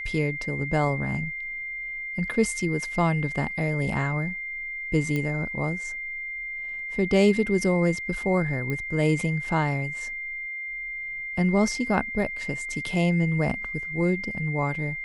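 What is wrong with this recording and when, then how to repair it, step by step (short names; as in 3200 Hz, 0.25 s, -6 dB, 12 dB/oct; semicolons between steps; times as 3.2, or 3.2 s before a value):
tone 2100 Hz -31 dBFS
5.16 pop -16 dBFS
8.7 pop -18 dBFS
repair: de-click; notch 2100 Hz, Q 30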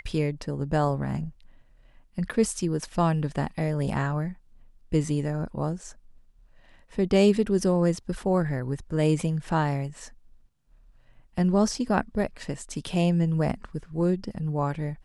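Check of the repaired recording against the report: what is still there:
5.16 pop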